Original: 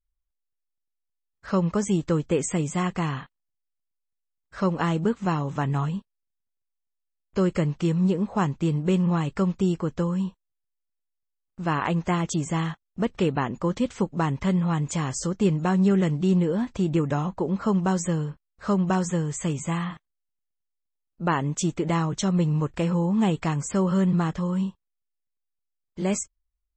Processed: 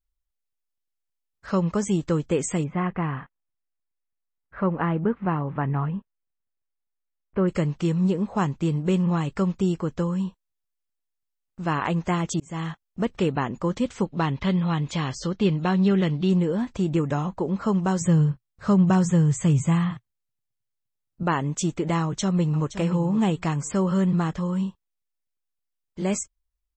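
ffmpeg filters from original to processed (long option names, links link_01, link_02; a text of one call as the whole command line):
ffmpeg -i in.wav -filter_complex "[0:a]asplit=3[link_01][link_02][link_03];[link_01]afade=type=out:start_time=2.63:duration=0.02[link_04];[link_02]lowpass=frequency=2300:width=0.5412,lowpass=frequency=2300:width=1.3066,afade=type=in:start_time=2.63:duration=0.02,afade=type=out:start_time=7.47:duration=0.02[link_05];[link_03]afade=type=in:start_time=7.47:duration=0.02[link_06];[link_04][link_05][link_06]amix=inputs=3:normalize=0,asettb=1/sr,asplit=3[link_07][link_08][link_09];[link_07]atrim=end=14.054[link_10];[link_08]atrim=start=14.05:end=16.3,asetpts=PTS-STARTPTS,afade=type=in:duration=0.004:curve=qsin,afade=type=out:start_time=2.246:duration=0.004:curve=qsin,lowpass=frequency=3900:width_type=q:width=2.2[link_11];[link_09]atrim=start=16.296[link_12];[link_10][link_11]acrossfade=duration=0.004:curve1=hsin:curve2=qsin[link_13];[link_13][link_12]acrossfade=duration=0.004:curve1=qsin:curve2=hsin,asettb=1/sr,asplit=3[link_14][link_15][link_16];[link_14]atrim=end=18.014[link_17];[link_15]atrim=start=18.01:end=21.23,asetpts=PTS-STARTPTS,afade=type=in:duration=0.004:curve=qsin,afade=type=out:start_time=3.216:duration=0.004:curve=qsin,equalizer=frequency=120:width=1.5:gain=14.5[link_18];[link_16]atrim=start=21.226[link_19];[link_17][link_18]acrossfade=duration=0.004:curve1=hsin:curve2=qsin[link_20];[link_20][link_19]acrossfade=duration=0.004:curve1=qsin:curve2=hsin,asplit=2[link_21][link_22];[link_22]afade=type=in:start_time=22.01:duration=0.01,afade=type=out:start_time=22.75:duration=0.01,aecho=0:1:520|1040:0.251189|0.0376783[link_23];[link_21][link_23]amix=inputs=2:normalize=0,asplit=2[link_24][link_25];[link_24]atrim=end=12.4,asetpts=PTS-STARTPTS,afade=type=out:start_time=12.396:duration=0.004:curve=hsin[link_26];[link_25]atrim=start=12.4,asetpts=PTS-STARTPTS,afade=type=in:duration=0.46:curve=qsin[link_27];[link_26][link_27]concat=n=2:v=0:a=1" out.wav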